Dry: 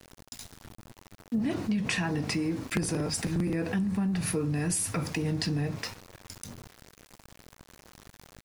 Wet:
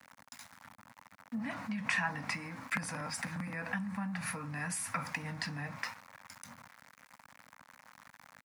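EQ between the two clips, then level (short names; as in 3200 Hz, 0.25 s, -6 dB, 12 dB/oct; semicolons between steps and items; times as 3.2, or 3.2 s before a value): Bessel high-pass 170 Hz, order 2; Chebyshev band-stop 260–540 Hz, order 2; band shelf 1400 Hz +10.5 dB; -7.5 dB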